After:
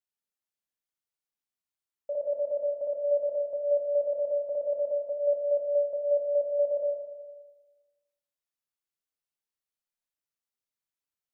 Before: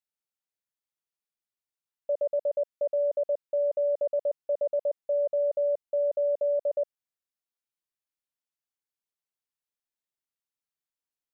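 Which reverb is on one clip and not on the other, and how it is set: Schroeder reverb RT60 1.3 s, combs from 26 ms, DRR -1 dB; trim -5 dB

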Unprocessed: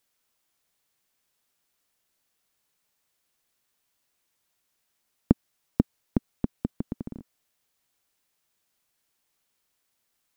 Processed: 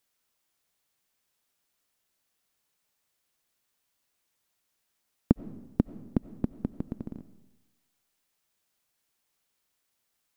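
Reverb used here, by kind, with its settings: algorithmic reverb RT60 1.1 s, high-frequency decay 0.9×, pre-delay 50 ms, DRR 15 dB; trim -2 dB

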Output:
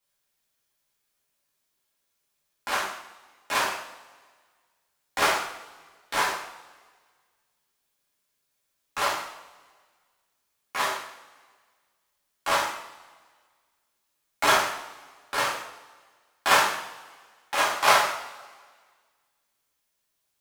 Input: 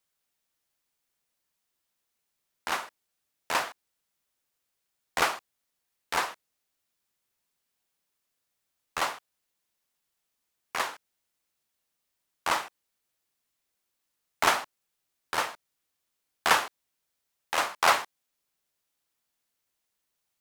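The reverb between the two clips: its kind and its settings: two-slope reverb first 0.63 s, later 1.7 s, from -16 dB, DRR -7 dB; trim -3.5 dB

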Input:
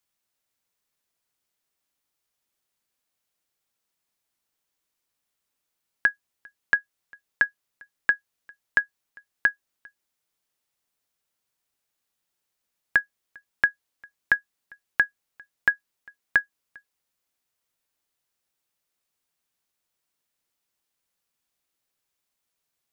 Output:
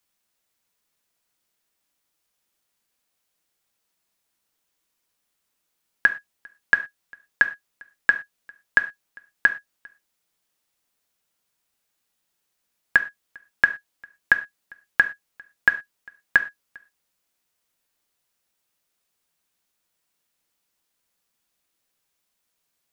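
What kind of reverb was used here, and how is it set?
gated-style reverb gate 140 ms falling, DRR 8 dB; trim +4 dB

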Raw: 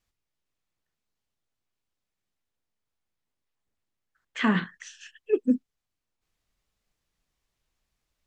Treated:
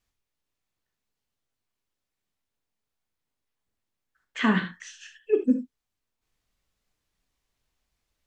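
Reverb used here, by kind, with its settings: gated-style reverb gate 100 ms flat, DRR 6 dB

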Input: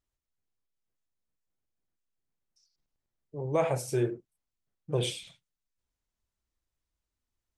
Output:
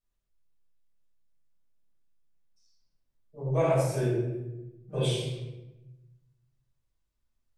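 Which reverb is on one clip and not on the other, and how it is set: simulated room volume 440 m³, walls mixed, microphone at 6.6 m; trim -12.5 dB

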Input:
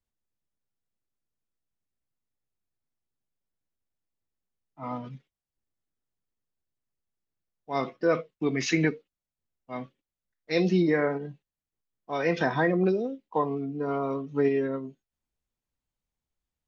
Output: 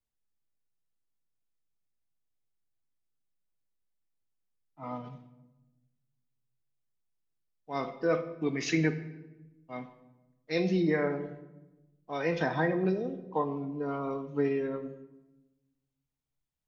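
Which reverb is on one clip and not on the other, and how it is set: simulated room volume 490 m³, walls mixed, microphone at 0.49 m; trim -4.5 dB

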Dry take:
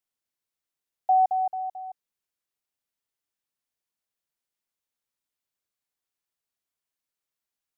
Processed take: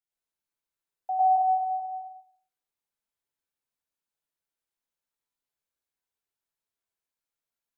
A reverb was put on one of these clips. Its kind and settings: plate-style reverb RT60 0.6 s, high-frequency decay 0.5×, pre-delay 90 ms, DRR -7 dB; trim -9.5 dB

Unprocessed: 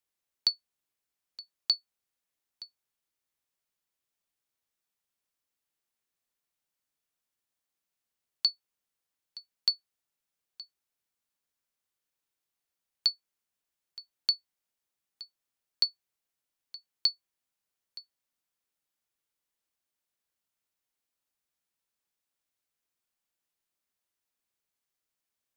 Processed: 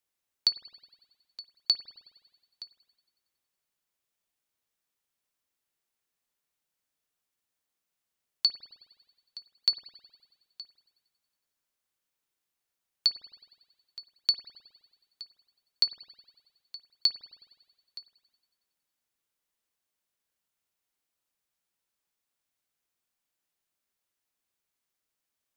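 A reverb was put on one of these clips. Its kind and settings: spring tank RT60 1.5 s, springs 52 ms, chirp 40 ms, DRR 10 dB; trim +1.5 dB

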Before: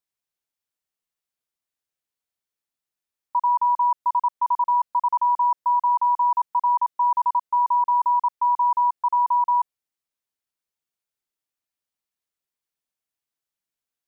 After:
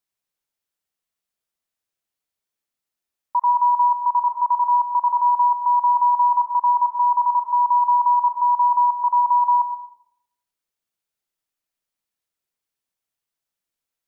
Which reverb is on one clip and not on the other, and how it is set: algorithmic reverb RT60 0.82 s, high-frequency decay 0.25×, pre-delay 50 ms, DRR 8 dB; trim +2 dB

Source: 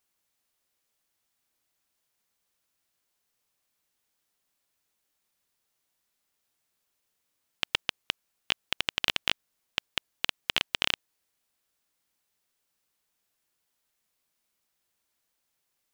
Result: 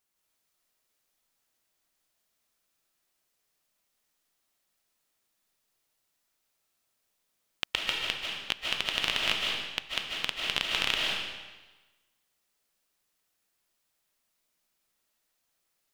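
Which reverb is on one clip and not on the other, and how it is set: algorithmic reverb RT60 1.2 s, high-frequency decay 0.95×, pre-delay 110 ms, DRR -2 dB; trim -2.5 dB

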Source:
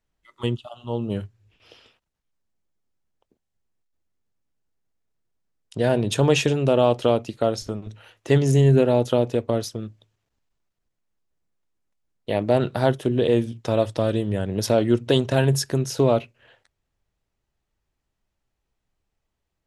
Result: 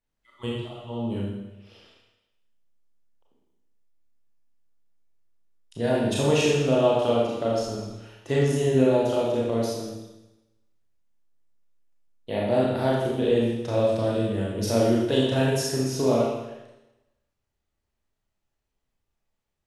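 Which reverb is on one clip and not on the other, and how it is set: Schroeder reverb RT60 1 s, combs from 27 ms, DRR -5 dB; trim -8 dB

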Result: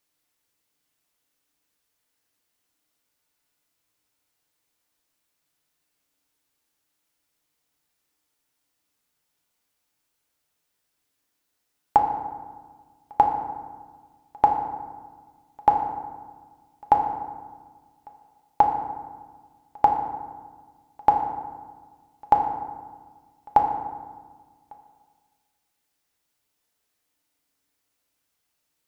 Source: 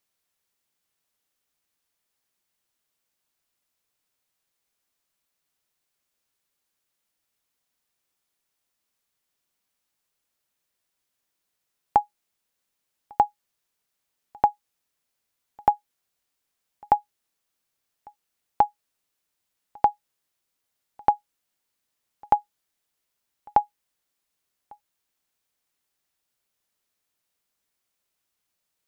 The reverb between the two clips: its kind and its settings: FDN reverb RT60 1.5 s, low-frequency decay 1.35×, high-frequency decay 0.55×, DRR 2 dB; trim +1.5 dB

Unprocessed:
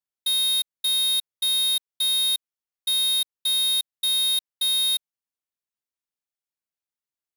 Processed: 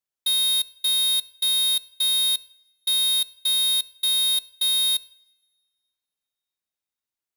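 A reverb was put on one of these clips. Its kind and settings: two-slope reverb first 0.75 s, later 2.8 s, from -26 dB, DRR 20 dB; trim +1.5 dB

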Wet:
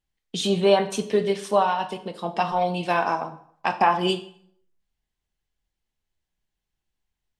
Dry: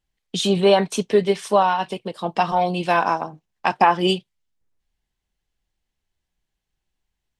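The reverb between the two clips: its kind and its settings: plate-style reverb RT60 0.62 s, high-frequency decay 0.8×, DRR 8 dB; trim -4 dB

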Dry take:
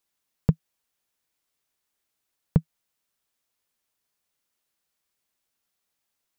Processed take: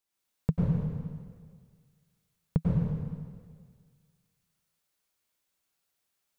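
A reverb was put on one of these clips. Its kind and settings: plate-style reverb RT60 1.8 s, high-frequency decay 1×, pre-delay 85 ms, DRR -5.5 dB; trim -6.5 dB

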